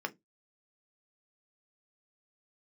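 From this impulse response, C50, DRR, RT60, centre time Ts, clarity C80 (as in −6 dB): 24.5 dB, 6.0 dB, 0.15 s, 4 ms, 35.0 dB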